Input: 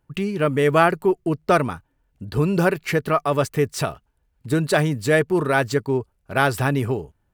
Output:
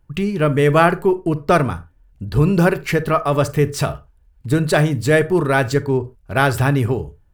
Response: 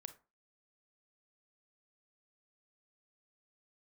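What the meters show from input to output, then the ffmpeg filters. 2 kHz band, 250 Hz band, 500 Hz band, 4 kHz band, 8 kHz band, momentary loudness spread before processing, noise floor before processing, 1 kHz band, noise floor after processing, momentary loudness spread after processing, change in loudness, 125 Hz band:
+2.5 dB, +4.0 dB, +3.0 dB, +2.5 dB, +2.5 dB, 9 LU, -69 dBFS, +2.5 dB, -54 dBFS, 9 LU, +3.5 dB, +6.0 dB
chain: -filter_complex "[0:a]asplit=2[s0][s1];[s1]lowshelf=f=95:g=11.5[s2];[1:a]atrim=start_sample=2205,atrim=end_sample=6615,lowshelf=f=98:g=8[s3];[s2][s3]afir=irnorm=-1:irlink=0,volume=2.66[s4];[s0][s4]amix=inputs=2:normalize=0,volume=0.562"

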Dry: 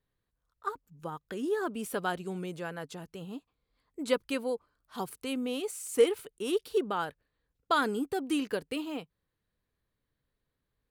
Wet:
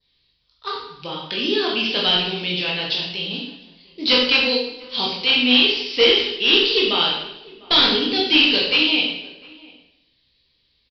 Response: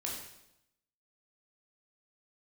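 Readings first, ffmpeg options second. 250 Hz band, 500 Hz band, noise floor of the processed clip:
+10.0 dB, +7.5 dB, -66 dBFS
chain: -filter_complex "[0:a]adynamicequalizer=threshold=0.00251:dfrequency=2600:dqfactor=1.8:tfrequency=2600:tqfactor=1.8:attack=5:release=100:ratio=0.375:range=2:mode=boostabove:tftype=bell,asplit=2[s0][s1];[s1]acrusher=bits=5:mode=log:mix=0:aa=0.000001,volume=0.531[s2];[s0][s2]amix=inputs=2:normalize=0,aexciter=amount=5.1:drive=9.9:freq=2300,aresample=11025,asoftclip=type=hard:threshold=0.224,aresample=44100,asplit=2[s3][s4];[s4]adelay=699.7,volume=0.0794,highshelf=f=4000:g=-15.7[s5];[s3][s5]amix=inputs=2:normalize=0[s6];[1:a]atrim=start_sample=2205[s7];[s6][s7]afir=irnorm=-1:irlink=0,volume=1.41"

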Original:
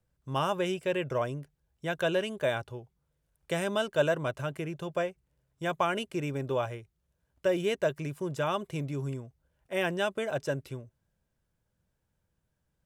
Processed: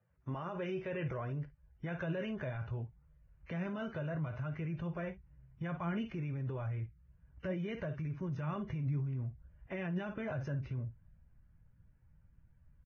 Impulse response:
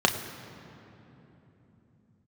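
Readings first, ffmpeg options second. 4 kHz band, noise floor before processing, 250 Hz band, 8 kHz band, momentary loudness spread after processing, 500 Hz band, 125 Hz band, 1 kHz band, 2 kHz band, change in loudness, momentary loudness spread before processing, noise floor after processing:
-17.5 dB, -79 dBFS, -3.5 dB, under -25 dB, 7 LU, -12.5 dB, +0.5 dB, -12.5 dB, -11.0 dB, -8.0 dB, 9 LU, -67 dBFS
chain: -filter_complex "[0:a]asplit=2[s0][s1];[s1]aecho=0:1:18|53:0.141|0.168[s2];[s0][s2]amix=inputs=2:normalize=0,asubboost=boost=7:cutoff=160,bandreject=f=1600:w=30,acrossover=split=440[s3][s4];[s4]acompressor=threshold=0.02:ratio=2.5[s5];[s3][s5]amix=inputs=2:normalize=0,highshelf=f=2900:t=q:w=1.5:g=-13,acompressor=threshold=0.0282:ratio=2.5,alimiter=level_in=2.51:limit=0.0631:level=0:latency=1:release=24,volume=0.398,flanger=delay=1.6:depth=6.4:regen=75:speed=0.63:shape=sinusoidal,volume=1.78" -ar 16000 -c:a libvorbis -b:a 16k

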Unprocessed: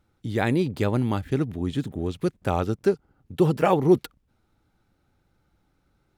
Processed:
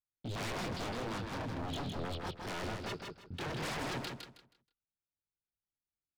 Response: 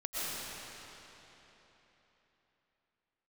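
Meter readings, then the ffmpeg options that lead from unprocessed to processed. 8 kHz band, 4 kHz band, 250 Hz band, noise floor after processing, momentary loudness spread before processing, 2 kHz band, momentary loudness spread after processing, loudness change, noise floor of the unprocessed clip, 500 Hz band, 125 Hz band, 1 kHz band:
no reading, -1.5 dB, -17.5 dB, under -85 dBFS, 9 LU, -7.0 dB, 6 LU, -15.0 dB, -70 dBFS, -18.5 dB, -15.5 dB, -11.5 dB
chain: -af "agate=range=0.02:threshold=0.00251:ratio=16:detection=peak,highshelf=f=3800:g=10.5,aresample=11025,asoftclip=type=tanh:threshold=0.112,aresample=44100,flanger=delay=19.5:depth=7.6:speed=0.37,aeval=exprs='0.0237*(abs(mod(val(0)/0.0237+3,4)-2)-1)':c=same,aecho=1:1:159|318|477|636:0.596|0.155|0.0403|0.0105,volume=0.794"

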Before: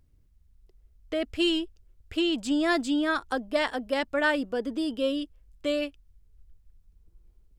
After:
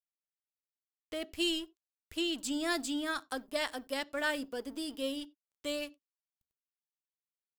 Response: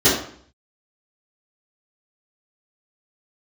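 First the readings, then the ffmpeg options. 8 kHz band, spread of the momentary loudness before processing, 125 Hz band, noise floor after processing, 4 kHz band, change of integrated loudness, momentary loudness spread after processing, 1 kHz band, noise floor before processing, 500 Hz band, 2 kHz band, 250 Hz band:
+3.0 dB, 9 LU, no reading, under -85 dBFS, -4.0 dB, -7.5 dB, 10 LU, -8.5 dB, -62 dBFS, -9.5 dB, -7.0 dB, -9.5 dB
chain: -filter_complex "[0:a]aemphasis=mode=production:type=75fm,aeval=exprs='sgn(val(0))*max(abs(val(0))-0.00562,0)':c=same,asplit=2[s0][s1];[1:a]atrim=start_sample=2205,atrim=end_sample=4410[s2];[s1][s2]afir=irnorm=-1:irlink=0,volume=0.00841[s3];[s0][s3]amix=inputs=2:normalize=0,volume=0.398"

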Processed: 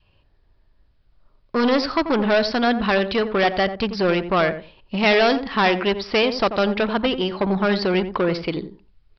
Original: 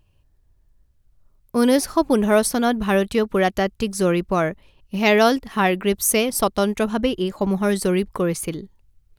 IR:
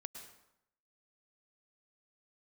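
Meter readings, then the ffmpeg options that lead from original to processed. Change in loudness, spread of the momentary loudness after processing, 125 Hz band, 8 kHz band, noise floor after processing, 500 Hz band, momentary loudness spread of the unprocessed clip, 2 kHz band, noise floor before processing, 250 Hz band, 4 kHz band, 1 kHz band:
0.0 dB, 5 LU, -2.0 dB, under -20 dB, -60 dBFS, 0.0 dB, 6 LU, +3.0 dB, -62 dBFS, -1.5 dB, +4.0 dB, +1.0 dB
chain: -filter_complex "[0:a]adynamicequalizer=threshold=0.0316:dfrequency=400:dqfactor=0.85:tfrequency=400:tqfactor=0.85:attack=5:release=100:ratio=0.375:range=2:mode=cutabove:tftype=bell,aresample=11025,asoftclip=type=tanh:threshold=0.0944,aresample=44100,lowshelf=f=260:g=-10.5,asplit=2[s0][s1];[s1]adelay=88,lowpass=f=920:p=1,volume=0.376,asplit=2[s2][s3];[s3]adelay=88,lowpass=f=920:p=1,volume=0.2,asplit=2[s4][s5];[s5]adelay=88,lowpass=f=920:p=1,volume=0.2[s6];[s0][s2][s4][s6]amix=inputs=4:normalize=0,volume=2.82"

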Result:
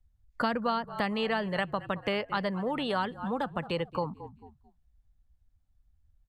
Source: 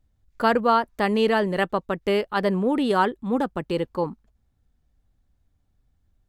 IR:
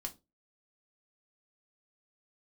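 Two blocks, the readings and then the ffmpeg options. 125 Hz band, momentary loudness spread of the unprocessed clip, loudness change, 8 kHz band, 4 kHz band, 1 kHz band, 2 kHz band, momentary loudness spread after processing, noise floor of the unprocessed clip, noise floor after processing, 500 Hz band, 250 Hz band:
-5.5 dB, 7 LU, -8.0 dB, no reading, -3.5 dB, -8.0 dB, -6.0 dB, 4 LU, -69 dBFS, -70 dBFS, -9.5 dB, -8.5 dB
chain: -filter_complex "[0:a]asplit=4[s0][s1][s2][s3];[s1]adelay=220,afreqshift=-39,volume=0.1[s4];[s2]adelay=440,afreqshift=-78,volume=0.0422[s5];[s3]adelay=660,afreqshift=-117,volume=0.0176[s6];[s0][s4][s5][s6]amix=inputs=4:normalize=0,asplit=2[s7][s8];[s8]acompressor=threshold=0.0355:ratio=6,volume=0.841[s9];[s7][s9]amix=inputs=2:normalize=0,equalizer=f=380:w=1.9:g=-9.5,afftdn=nr=14:nf=-44,acrossover=split=89|410|2700[s10][s11][s12][s13];[s10]acompressor=threshold=0.001:ratio=4[s14];[s11]acompressor=threshold=0.0282:ratio=4[s15];[s12]acompressor=threshold=0.0316:ratio=4[s16];[s13]acompressor=threshold=0.00891:ratio=4[s17];[s14][s15][s16][s17]amix=inputs=4:normalize=0,aresample=32000,aresample=44100,adynamicequalizer=threshold=0.00631:dfrequency=250:dqfactor=1.4:tfrequency=250:tqfactor=1.4:attack=5:release=100:ratio=0.375:range=3:mode=cutabove:tftype=bell"

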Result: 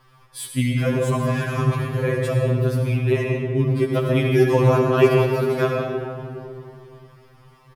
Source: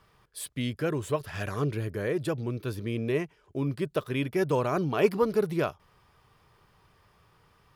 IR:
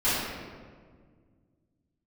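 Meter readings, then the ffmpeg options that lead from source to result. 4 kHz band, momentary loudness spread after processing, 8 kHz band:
+7.0 dB, 14 LU, no reading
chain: -filter_complex "[0:a]asplit=6[s0][s1][s2][s3][s4][s5];[s1]adelay=205,afreqshift=100,volume=0.075[s6];[s2]adelay=410,afreqshift=200,volume=0.0457[s7];[s3]adelay=615,afreqshift=300,volume=0.0279[s8];[s4]adelay=820,afreqshift=400,volume=0.017[s9];[s5]adelay=1025,afreqshift=500,volume=0.0104[s10];[s0][s6][s7][s8][s9][s10]amix=inputs=6:normalize=0,asplit=2[s11][s12];[1:a]atrim=start_sample=2205,asetrate=31311,aresample=44100,adelay=69[s13];[s12][s13]afir=irnorm=-1:irlink=0,volume=0.141[s14];[s11][s14]amix=inputs=2:normalize=0,afftfilt=real='re*2.45*eq(mod(b,6),0)':imag='im*2.45*eq(mod(b,6),0)':win_size=2048:overlap=0.75,volume=2.51"

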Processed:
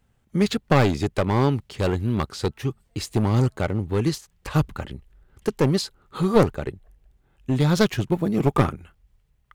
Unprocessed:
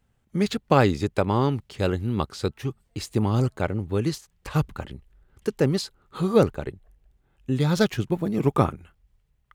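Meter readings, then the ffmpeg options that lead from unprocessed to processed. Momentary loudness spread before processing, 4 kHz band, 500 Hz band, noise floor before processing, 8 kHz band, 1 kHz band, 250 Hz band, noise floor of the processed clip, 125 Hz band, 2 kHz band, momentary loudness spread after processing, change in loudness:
13 LU, +2.5 dB, +1.0 dB, -69 dBFS, +3.0 dB, +0.5 dB, +2.0 dB, -66 dBFS, +2.5 dB, +2.0 dB, 14 LU, +1.5 dB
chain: -af "aeval=exprs='clip(val(0),-1,0.1)':c=same,volume=1.41"

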